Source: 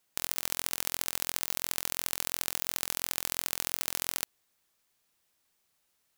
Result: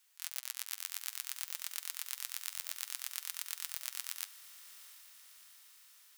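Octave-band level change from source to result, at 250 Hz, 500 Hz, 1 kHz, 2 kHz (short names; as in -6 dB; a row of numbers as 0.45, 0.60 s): under -30 dB, under -20 dB, -13.5 dB, -9.0 dB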